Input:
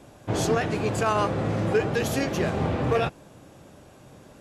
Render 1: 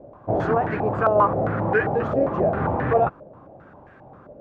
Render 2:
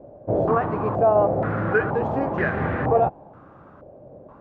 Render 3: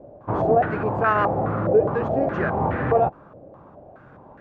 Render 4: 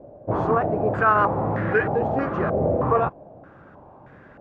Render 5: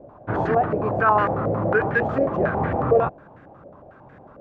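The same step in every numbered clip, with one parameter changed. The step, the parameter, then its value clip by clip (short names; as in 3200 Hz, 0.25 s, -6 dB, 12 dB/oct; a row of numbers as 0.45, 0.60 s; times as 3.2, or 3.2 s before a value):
stepped low-pass, rate: 7.5, 2.1, 4.8, 3.2, 11 Hz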